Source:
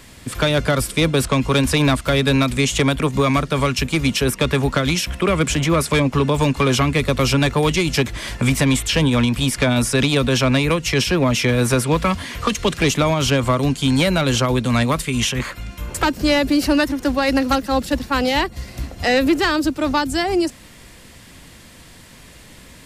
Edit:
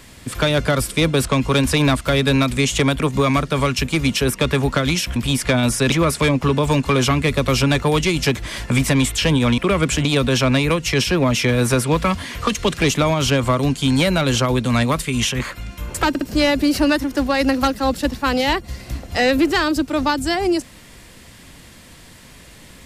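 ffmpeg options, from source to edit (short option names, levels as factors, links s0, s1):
-filter_complex "[0:a]asplit=7[s0][s1][s2][s3][s4][s5][s6];[s0]atrim=end=5.162[s7];[s1]atrim=start=9.288:end=10.052[s8];[s2]atrim=start=5.628:end=9.292[s9];[s3]atrim=start=5.158:end=5.632[s10];[s4]atrim=start=10.048:end=16.152[s11];[s5]atrim=start=16.088:end=16.152[s12];[s6]atrim=start=16.088[s13];[s7][s8]acrossfade=d=0.004:c1=hsin:c2=hsin[s14];[s14][s9]acrossfade=d=0.004:c1=hsin:c2=hsin[s15];[s15][s10]acrossfade=d=0.004:c1=hsin:c2=hsin[s16];[s16][s11]acrossfade=d=0.004:c1=hsin:c2=hsin[s17];[s17][s12]acrossfade=d=0.004:c1=hsin:c2=hsin[s18];[s18][s13]acrossfade=d=0.004:c1=hsin:c2=hsin"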